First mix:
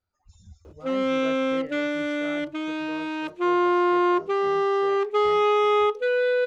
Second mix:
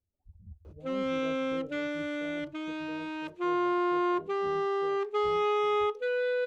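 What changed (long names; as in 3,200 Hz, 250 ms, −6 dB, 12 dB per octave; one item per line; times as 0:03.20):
speech: add Gaussian smoothing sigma 16 samples
background −7.0 dB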